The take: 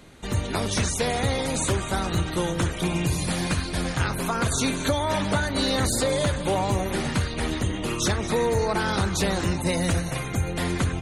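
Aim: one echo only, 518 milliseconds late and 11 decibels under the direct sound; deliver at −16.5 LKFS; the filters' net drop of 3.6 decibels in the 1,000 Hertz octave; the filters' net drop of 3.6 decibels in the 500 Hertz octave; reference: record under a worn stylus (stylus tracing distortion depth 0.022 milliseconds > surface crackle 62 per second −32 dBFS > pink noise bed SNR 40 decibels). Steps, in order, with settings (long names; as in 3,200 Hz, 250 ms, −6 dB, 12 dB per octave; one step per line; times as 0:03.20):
parametric band 500 Hz −3.5 dB
parametric band 1,000 Hz −3.5 dB
single-tap delay 518 ms −11 dB
stylus tracing distortion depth 0.022 ms
surface crackle 62 per second −32 dBFS
pink noise bed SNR 40 dB
level +9.5 dB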